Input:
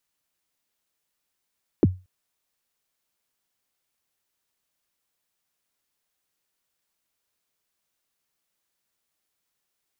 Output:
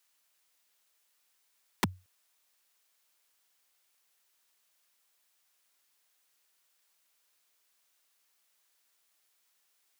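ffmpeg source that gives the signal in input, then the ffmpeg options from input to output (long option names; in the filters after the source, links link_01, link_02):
-f lavfi -i "aevalsrc='0.335*pow(10,-3*t/0.27)*sin(2*PI*(440*0.03/log(92/440)*(exp(log(92/440)*min(t,0.03)/0.03)-1)+92*max(t-0.03,0)))':duration=0.23:sample_rate=44100"
-filter_complex "[0:a]highpass=frequency=850:poles=1,asplit=2[link_01][link_02];[link_02]alimiter=level_in=4.5dB:limit=-24dB:level=0:latency=1:release=142,volume=-4.5dB,volume=1dB[link_03];[link_01][link_03]amix=inputs=2:normalize=0,aeval=exprs='(mod(9.44*val(0)+1,2)-1)/9.44':channel_layout=same"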